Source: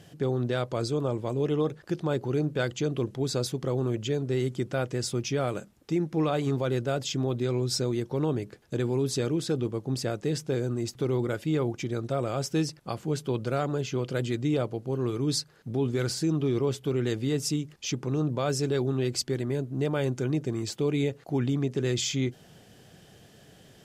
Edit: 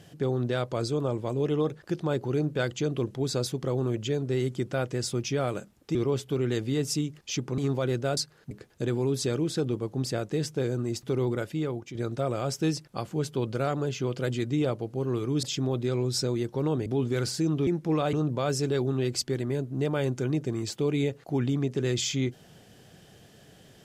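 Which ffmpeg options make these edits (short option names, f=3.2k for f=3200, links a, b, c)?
-filter_complex "[0:a]asplit=10[a][b][c][d][e][f][g][h][i][j];[a]atrim=end=5.952[k];[b]atrim=start=16.498:end=18.132[l];[c]atrim=start=6.408:end=7.002[m];[d]atrim=start=15.348:end=15.692[n];[e]atrim=start=8.428:end=11.87,asetpts=PTS-STARTPTS,afade=t=out:st=2.802:d=0.64:silence=0.354813[o];[f]atrim=start=11.87:end=15.352,asetpts=PTS-STARTPTS,afade=t=in:d=0.004:c=hsin:silence=0.354813[p];[g]atrim=start=6.998:end=8.432[q];[h]atrim=start=15.688:end=16.502[r];[i]atrim=start=5.948:end=6.412[s];[j]atrim=start=18.128[t];[k][l]acrossfade=d=0.004:c1=hsin:c2=hsin[u];[u][m]acrossfade=d=0.004:c1=hsin:c2=hsin[v];[v][n]acrossfade=d=0.004:c1=hsin:c2=hsin[w];[o][p]concat=n=2:v=0:a=1[x];[w][x]acrossfade=d=0.004:c1=hsin:c2=hsin[y];[y][q]acrossfade=d=0.004:c1=hsin:c2=hsin[z];[z][r]acrossfade=d=0.004:c1=hsin:c2=hsin[aa];[aa][s]acrossfade=d=0.004:c1=hsin:c2=hsin[ab];[ab][t]acrossfade=d=0.004:c1=hsin:c2=hsin"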